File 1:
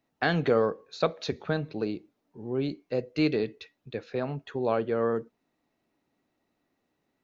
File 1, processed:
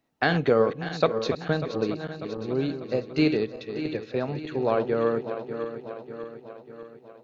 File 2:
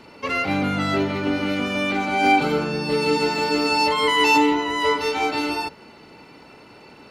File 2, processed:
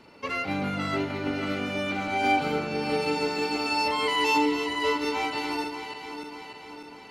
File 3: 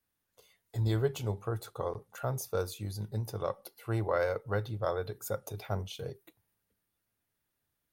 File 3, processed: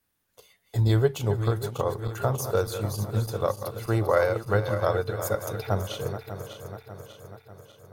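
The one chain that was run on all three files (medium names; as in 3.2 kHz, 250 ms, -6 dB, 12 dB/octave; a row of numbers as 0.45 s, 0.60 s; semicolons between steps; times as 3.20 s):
backward echo that repeats 297 ms, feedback 73%, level -9 dB; transient shaper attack +2 dB, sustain -2 dB; normalise loudness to -27 LUFS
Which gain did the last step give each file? +2.0 dB, -7.0 dB, +7.0 dB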